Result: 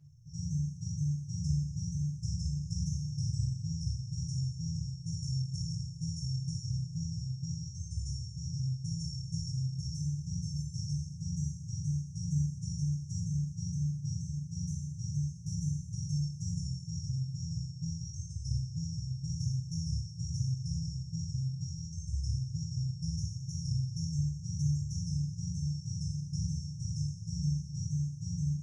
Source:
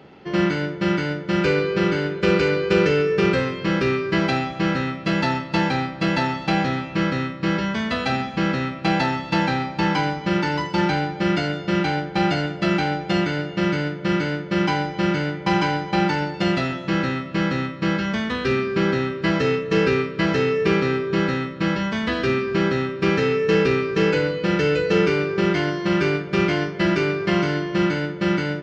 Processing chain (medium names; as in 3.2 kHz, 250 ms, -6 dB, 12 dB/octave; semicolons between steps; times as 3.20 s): brick-wall FIR band-stop 150–5200 Hz; flange 0.93 Hz, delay 7.9 ms, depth 4.5 ms, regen -30%; two-slope reverb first 0.6 s, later 3.6 s, from -16 dB, DRR -2.5 dB